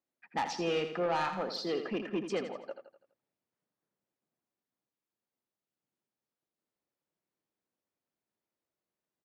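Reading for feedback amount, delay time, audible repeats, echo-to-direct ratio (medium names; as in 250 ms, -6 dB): 46%, 83 ms, 4, -8.0 dB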